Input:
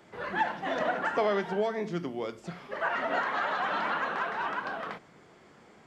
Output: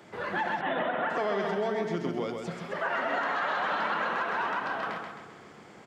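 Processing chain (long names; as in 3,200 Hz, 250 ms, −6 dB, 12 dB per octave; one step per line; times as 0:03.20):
in parallel at −1.5 dB: downward compressor, threshold −40 dBFS, peak gain reduction 16.5 dB
on the sum: high-pass filter 59 Hz
on a send: repeating echo 132 ms, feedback 48%, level −5 dB
on the sum: brickwall limiter −19.5 dBFS, peak gain reduction 5.5 dB
0:00.61–0:01.10: Butterworth low-pass 3,700 Hz 72 dB per octave
level −1 dB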